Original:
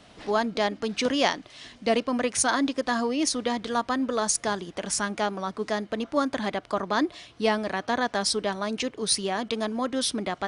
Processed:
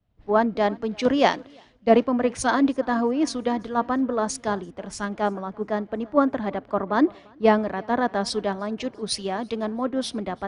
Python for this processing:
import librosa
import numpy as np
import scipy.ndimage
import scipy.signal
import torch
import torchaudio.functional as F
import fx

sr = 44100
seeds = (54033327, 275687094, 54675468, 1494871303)

y = fx.lowpass(x, sr, hz=1000.0, slope=6)
y = fx.echo_feedback(y, sr, ms=343, feedback_pct=50, wet_db=-21)
y = fx.band_widen(y, sr, depth_pct=100)
y = F.gain(torch.from_numpy(y), 5.0).numpy()